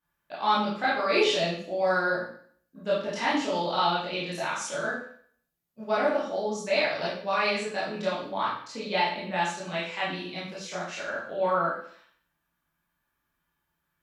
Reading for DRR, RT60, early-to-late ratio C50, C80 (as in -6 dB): -9.0 dB, 0.55 s, 2.0 dB, 6.5 dB